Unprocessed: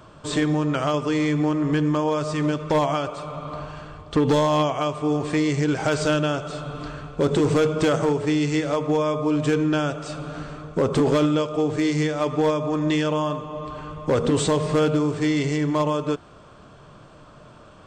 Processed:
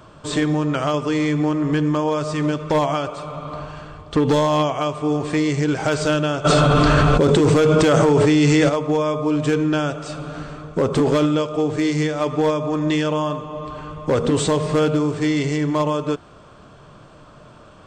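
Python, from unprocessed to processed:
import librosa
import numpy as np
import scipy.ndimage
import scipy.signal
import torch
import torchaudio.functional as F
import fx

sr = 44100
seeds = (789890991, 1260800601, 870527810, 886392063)

y = fx.env_flatten(x, sr, amount_pct=100, at=(6.44, 8.68), fade=0.02)
y = F.gain(torch.from_numpy(y), 2.0).numpy()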